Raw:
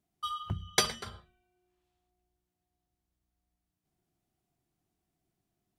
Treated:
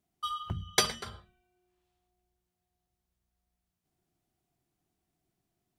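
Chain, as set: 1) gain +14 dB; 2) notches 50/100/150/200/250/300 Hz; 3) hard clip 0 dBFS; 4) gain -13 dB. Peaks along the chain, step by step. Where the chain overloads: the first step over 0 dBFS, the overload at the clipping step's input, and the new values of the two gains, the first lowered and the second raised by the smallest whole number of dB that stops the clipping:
+4.5, +4.5, 0.0, -13.0 dBFS; step 1, 4.5 dB; step 1 +9 dB, step 4 -8 dB

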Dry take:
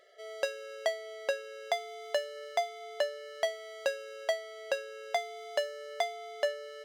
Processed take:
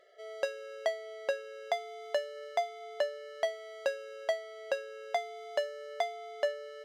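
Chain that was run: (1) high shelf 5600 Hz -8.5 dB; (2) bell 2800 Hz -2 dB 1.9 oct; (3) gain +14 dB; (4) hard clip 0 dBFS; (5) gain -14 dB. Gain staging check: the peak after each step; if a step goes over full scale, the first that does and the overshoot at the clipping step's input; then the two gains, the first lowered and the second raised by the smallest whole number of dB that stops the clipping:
-17.0, -18.0, -4.0, -4.0, -18.0 dBFS; no overload

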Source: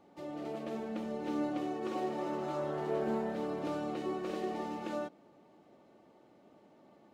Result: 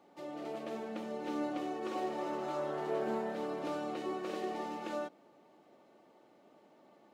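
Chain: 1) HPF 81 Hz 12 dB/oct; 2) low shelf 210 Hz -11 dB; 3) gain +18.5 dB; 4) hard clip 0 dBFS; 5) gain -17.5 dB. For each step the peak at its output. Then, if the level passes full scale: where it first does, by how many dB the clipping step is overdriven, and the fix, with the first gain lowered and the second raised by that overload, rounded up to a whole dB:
-22.0, -23.5, -5.0, -5.0, -22.5 dBFS; no overload

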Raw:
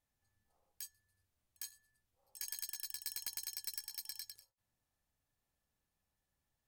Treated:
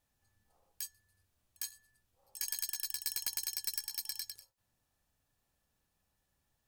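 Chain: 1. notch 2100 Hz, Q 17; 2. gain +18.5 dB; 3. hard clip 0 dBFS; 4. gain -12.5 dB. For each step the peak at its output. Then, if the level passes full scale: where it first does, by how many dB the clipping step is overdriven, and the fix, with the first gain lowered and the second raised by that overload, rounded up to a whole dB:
-22.0, -3.5, -3.5, -16.0 dBFS; no overload

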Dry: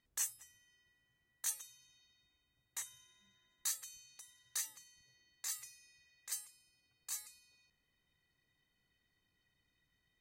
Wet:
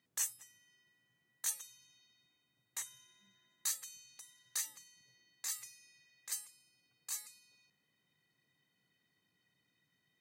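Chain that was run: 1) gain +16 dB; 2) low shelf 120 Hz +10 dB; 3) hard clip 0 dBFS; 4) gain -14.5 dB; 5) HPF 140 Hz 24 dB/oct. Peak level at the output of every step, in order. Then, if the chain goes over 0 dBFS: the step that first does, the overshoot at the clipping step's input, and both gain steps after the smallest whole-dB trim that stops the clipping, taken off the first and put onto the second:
-5.5, -5.5, -5.5, -20.0, -20.5 dBFS; no overload

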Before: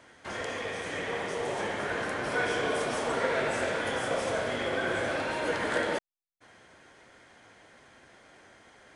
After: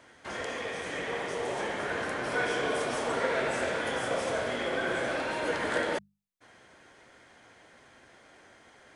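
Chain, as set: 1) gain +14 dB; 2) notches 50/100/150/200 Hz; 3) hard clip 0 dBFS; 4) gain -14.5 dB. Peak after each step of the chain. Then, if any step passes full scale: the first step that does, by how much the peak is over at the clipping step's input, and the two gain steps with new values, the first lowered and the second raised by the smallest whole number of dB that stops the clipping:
-1.5, -1.5, -1.5, -16.0 dBFS; no overload

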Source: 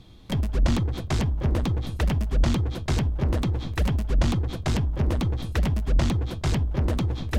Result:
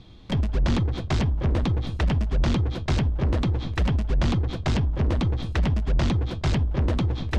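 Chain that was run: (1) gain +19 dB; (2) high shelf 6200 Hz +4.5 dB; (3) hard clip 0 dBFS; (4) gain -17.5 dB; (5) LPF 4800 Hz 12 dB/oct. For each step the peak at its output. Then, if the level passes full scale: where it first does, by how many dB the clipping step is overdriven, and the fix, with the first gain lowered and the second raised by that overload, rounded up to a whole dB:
+7.0, +7.0, 0.0, -17.5, -17.0 dBFS; step 1, 7.0 dB; step 1 +12 dB, step 4 -10.5 dB

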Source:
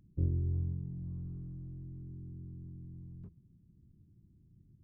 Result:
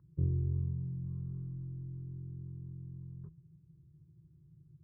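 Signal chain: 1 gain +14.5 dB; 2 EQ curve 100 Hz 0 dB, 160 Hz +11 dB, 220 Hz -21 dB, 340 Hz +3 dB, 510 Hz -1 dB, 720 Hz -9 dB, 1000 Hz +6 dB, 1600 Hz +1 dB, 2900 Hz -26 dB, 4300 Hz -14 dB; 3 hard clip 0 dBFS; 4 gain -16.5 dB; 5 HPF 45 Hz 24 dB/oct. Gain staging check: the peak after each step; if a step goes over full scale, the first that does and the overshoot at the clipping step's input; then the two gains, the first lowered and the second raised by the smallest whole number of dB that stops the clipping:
-5.5, -4.5, -4.5, -21.0, -22.5 dBFS; no overload

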